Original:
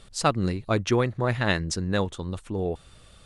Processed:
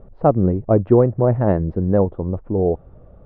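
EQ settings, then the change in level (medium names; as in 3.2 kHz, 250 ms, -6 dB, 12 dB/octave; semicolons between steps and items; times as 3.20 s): resonant low-pass 630 Hz, resonance Q 1.5; distance through air 460 m; +8.5 dB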